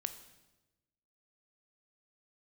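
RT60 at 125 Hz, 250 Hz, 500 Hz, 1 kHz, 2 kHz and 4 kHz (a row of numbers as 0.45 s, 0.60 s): 1.4 s, 1.3 s, 1.2 s, 0.95 s, 0.95 s, 0.95 s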